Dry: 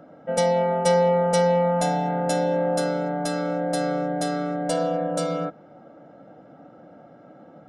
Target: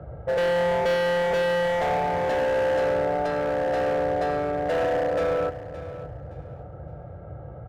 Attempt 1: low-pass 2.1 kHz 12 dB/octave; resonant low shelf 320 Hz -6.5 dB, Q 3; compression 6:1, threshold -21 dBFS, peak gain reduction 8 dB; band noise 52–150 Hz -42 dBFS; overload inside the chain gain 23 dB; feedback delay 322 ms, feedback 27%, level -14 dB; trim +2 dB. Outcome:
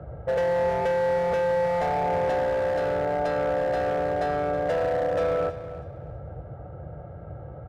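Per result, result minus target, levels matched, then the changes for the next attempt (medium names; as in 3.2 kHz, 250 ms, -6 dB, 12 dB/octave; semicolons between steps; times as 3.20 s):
echo 247 ms early; compression: peak gain reduction +8 dB
change: feedback delay 569 ms, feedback 27%, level -14 dB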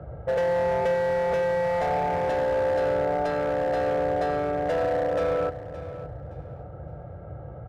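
compression: peak gain reduction +8 dB
remove: compression 6:1, threshold -21 dBFS, peak gain reduction 8 dB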